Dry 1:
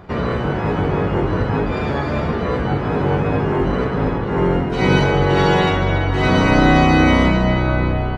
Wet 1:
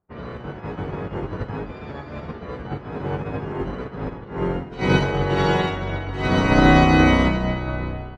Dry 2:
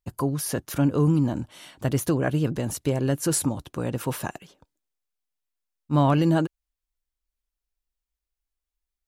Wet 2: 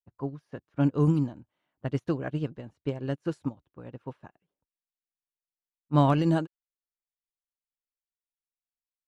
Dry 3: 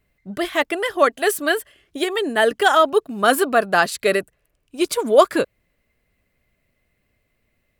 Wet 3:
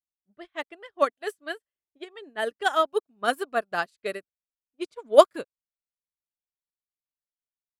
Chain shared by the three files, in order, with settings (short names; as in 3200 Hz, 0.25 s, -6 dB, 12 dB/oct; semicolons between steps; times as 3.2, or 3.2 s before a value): low-pass opened by the level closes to 1400 Hz, open at -13 dBFS; upward expander 2.5:1, over -36 dBFS